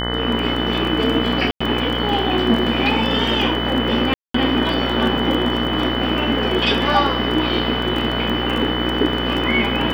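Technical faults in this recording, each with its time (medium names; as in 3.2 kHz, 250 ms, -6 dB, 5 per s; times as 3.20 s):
buzz 60 Hz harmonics 35 -24 dBFS
crackle 19 per s -23 dBFS
whine 3 kHz -25 dBFS
1.51–1.60 s: dropout 95 ms
4.14–4.34 s: dropout 204 ms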